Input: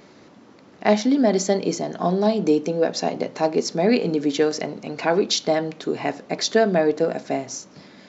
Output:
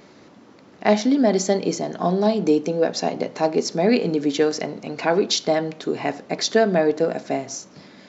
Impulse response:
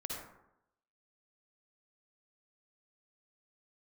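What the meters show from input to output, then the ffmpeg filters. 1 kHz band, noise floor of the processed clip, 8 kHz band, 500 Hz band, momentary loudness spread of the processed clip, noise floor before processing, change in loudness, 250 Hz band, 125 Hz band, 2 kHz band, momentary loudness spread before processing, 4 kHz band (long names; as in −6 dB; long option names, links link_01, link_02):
+0.5 dB, −49 dBFS, can't be measured, +0.5 dB, 9 LU, −49 dBFS, +0.5 dB, +0.5 dB, +0.5 dB, +0.5 dB, 9 LU, +0.5 dB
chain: -filter_complex "[0:a]asplit=2[link_01][link_02];[1:a]atrim=start_sample=2205,asetrate=52920,aresample=44100[link_03];[link_02][link_03]afir=irnorm=-1:irlink=0,volume=-20dB[link_04];[link_01][link_04]amix=inputs=2:normalize=0"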